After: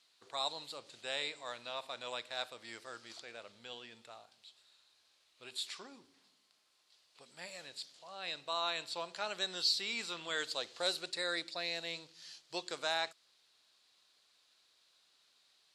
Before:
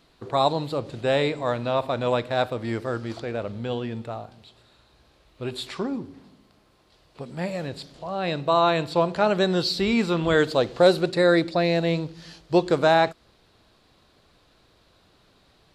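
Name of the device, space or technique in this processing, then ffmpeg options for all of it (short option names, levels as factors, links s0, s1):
piezo pickup straight into a mixer: -af "lowpass=8000,aderivative"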